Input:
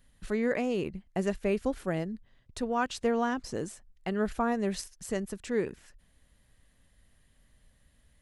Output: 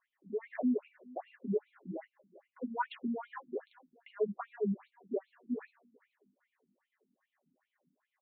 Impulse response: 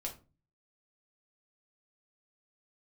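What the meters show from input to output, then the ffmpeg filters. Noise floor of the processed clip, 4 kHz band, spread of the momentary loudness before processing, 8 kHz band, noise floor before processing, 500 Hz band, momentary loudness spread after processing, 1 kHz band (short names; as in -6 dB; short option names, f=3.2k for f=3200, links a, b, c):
under -85 dBFS, -15.0 dB, 10 LU, under -35 dB, -66 dBFS, -7.0 dB, 12 LU, -8.0 dB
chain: -filter_complex "[0:a]asplit=2[a][b];[b]asoftclip=type=hard:threshold=-30dB,volume=-6dB[c];[a][c]amix=inputs=2:normalize=0,aphaser=in_gain=1:out_gain=1:delay=3.7:decay=0.27:speed=0.65:type=sinusoidal,acrossover=split=280|2300[d][e][f];[f]acrusher=bits=4:mix=0:aa=0.000001[g];[d][e][g]amix=inputs=3:normalize=0,aecho=1:1:445|890|1335:0.075|0.0337|0.0152[h];[1:a]atrim=start_sample=2205,atrim=end_sample=4410,asetrate=66150,aresample=44100[i];[h][i]afir=irnorm=-1:irlink=0,afftfilt=real='re*between(b*sr/1024,210*pow(3200/210,0.5+0.5*sin(2*PI*2.5*pts/sr))/1.41,210*pow(3200/210,0.5+0.5*sin(2*PI*2.5*pts/sr))*1.41)':imag='im*between(b*sr/1024,210*pow(3200/210,0.5+0.5*sin(2*PI*2.5*pts/sr))/1.41,210*pow(3200/210,0.5+0.5*sin(2*PI*2.5*pts/sr))*1.41)':win_size=1024:overlap=0.75"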